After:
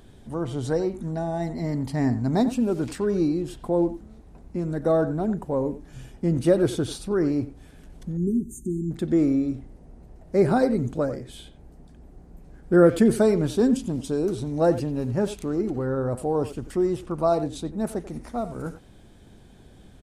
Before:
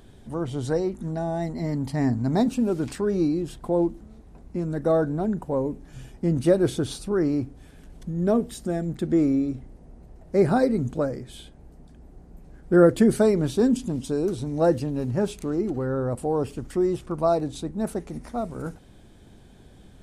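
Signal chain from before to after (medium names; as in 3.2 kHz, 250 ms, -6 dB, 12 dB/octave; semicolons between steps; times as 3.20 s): 8.17–8.91 s: brick-wall FIR band-stop 410–5900 Hz; speakerphone echo 90 ms, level -13 dB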